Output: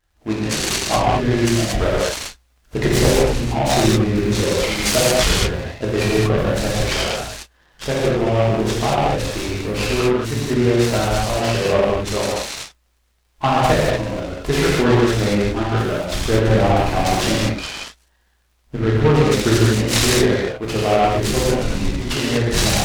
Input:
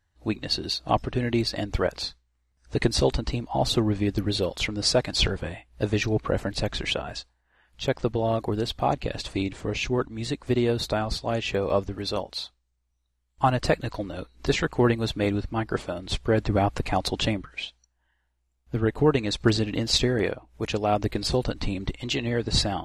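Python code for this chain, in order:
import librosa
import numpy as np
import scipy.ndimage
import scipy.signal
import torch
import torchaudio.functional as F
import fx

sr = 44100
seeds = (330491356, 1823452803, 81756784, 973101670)

y = fx.dmg_crackle(x, sr, seeds[0], per_s=79.0, level_db=-52.0)
y = fx.rev_gated(y, sr, seeds[1], gate_ms=260, shape='flat', drr_db=-7.5)
y = fx.noise_mod_delay(y, sr, seeds[2], noise_hz=1600.0, depth_ms=0.052)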